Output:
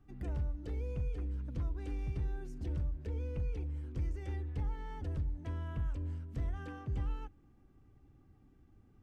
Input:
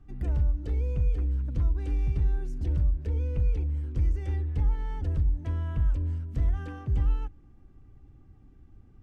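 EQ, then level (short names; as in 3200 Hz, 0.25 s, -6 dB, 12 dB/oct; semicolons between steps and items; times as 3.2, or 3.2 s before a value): low shelf 90 Hz -10 dB; -4.0 dB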